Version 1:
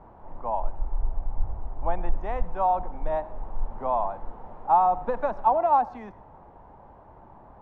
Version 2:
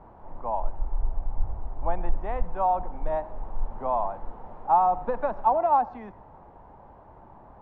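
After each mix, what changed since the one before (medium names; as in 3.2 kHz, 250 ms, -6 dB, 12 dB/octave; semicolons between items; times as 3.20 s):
speech: add distance through air 170 m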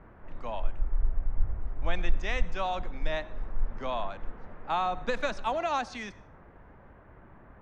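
background: add low-pass 1.8 kHz 24 dB/octave; master: remove resonant low-pass 870 Hz, resonance Q 3.9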